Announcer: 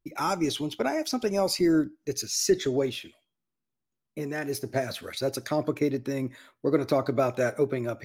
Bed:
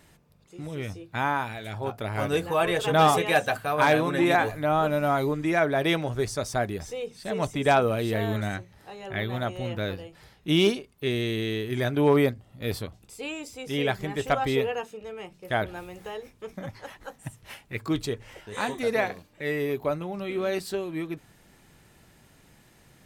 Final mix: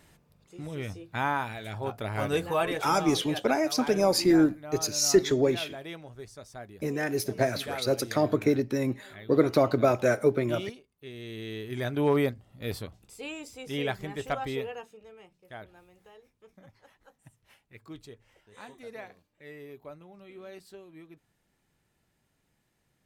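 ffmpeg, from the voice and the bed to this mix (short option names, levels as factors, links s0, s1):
-filter_complex "[0:a]adelay=2650,volume=1.26[s0];[1:a]volume=3.35,afade=t=out:st=2.55:d=0.37:silence=0.188365,afade=t=in:st=11.13:d=0.82:silence=0.237137,afade=t=out:st=13.76:d=1.75:silence=0.211349[s1];[s0][s1]amix=inputs=2:normalize=0"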